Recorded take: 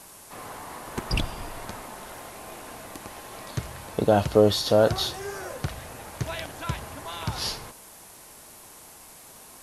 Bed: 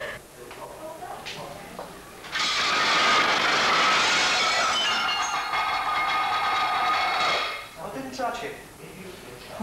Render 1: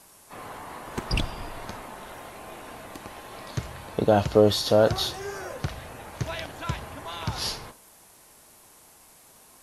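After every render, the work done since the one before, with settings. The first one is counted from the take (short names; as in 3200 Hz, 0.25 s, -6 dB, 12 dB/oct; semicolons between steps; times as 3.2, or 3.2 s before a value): noise print and reduce 6 dB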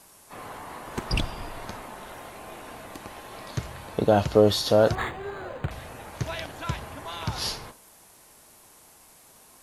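4.95–5.71 decimation joined by straight lines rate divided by 8×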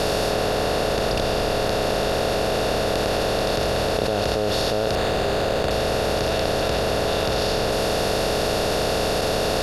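per-bin compression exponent 0.2; level quantiser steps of 11 dB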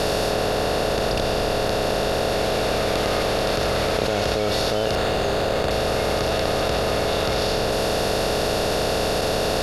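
add bed -12.5 dB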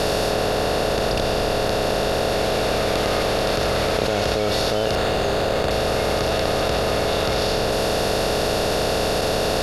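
gain +1 dB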